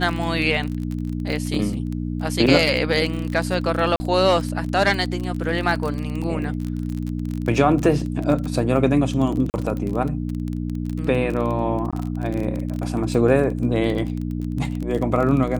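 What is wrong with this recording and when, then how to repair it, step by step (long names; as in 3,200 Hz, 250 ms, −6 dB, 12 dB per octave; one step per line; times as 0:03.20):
surface crackle 24 per second −25 dBFS
mains hum 60 Hz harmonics 5 −26 dBFS
0:03.96–0:04.00: drop-out 40 ms
0:09.50–0:09.54: drop-out 39 ms
0:11.91–0:11.93: drop-out 16 ms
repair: click removal
hum removal 60 Hz, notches 5
repair the gap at 0:03.96, 40 ms
repair the gap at 0:09.50, 39 ms
repair the gap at 0:11.91, 16 ms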